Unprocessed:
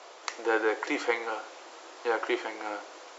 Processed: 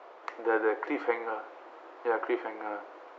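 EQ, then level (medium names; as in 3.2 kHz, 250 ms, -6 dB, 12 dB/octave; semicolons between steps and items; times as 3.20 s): low-pass 1.6 kHz 12 dB/octave; 0.0 dB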